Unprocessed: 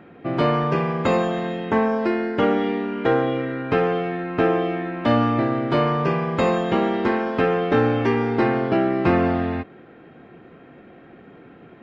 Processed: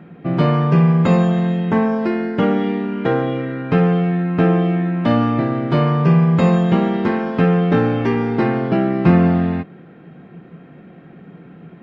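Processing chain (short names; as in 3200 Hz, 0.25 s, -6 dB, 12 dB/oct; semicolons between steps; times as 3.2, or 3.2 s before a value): bell 170 Hz +15 dB 0.55 oct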